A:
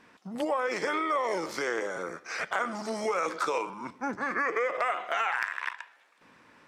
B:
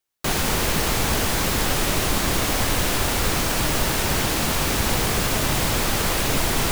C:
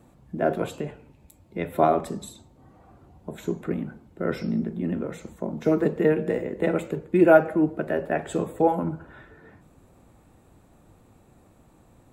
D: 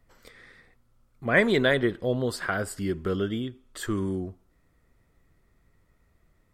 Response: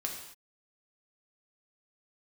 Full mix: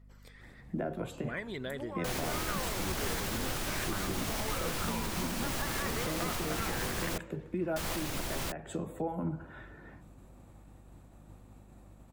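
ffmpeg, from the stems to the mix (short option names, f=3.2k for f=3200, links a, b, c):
-filter_complex "[0:a]adelay=1400,volume=-4dB[a];[1:a]adelay=1800,volume=-6dB,asplit=3[b][c][d];[b]atrim=end=7.18,asetpts=PTS-STARTPTS,afade=t=out:st=7.176:d=0.004:c=hsin[e];[c]atrim=start=7.18:end=7.76,asetpts=PTS-STARTPTS,volume=0[f];[d]atrim=start=7.76,asetpts=PTS-STARTPTS,afade=t=in:d=0.004:c=hsin[g];[e][f][g]concat=n=3:v=0:a=1[h];[2:a]agate=range=-33dB:threshold=-53dB:ratio=3:detection=peak,acrossover=split=170[i][j];[j]acompressor=threshold=-30dB:ratio=3[k];[i][k]amix=inputs=2:normalize=0,adelay=400,volume=-1dB[l];[3:a]volume=-6dB[m];[h][l]amix=inputs=2:normalize=0,bandreject=f=440:w=12,alimiter=level_in=0.5dB:limit=-24dB:level=0:latency=1:release=454,volume=-0.5dB,volume=0dB[n];[a][m]amix=inputs=2:normalize=0,aphaser=in_gain=1:out_gain=1:delay=1.2:decay=0.36:speed=1.7:type=sinusoidal,acompressor=threshold=-40dB:ratio=3,volume=0dB[o];[n][o]amix=inputs=2:normalize=0,aeval=exprs='val(0)+0.00178*(sin(2*PI*50*n/s)+sin(2*PI*2*50*n/s)/2+sin(2*PI*3*50*n/s)/3+sin(2*PI*4*50*n/s)/4+sin(2*PI*5*50*n/s)/5)':c=same"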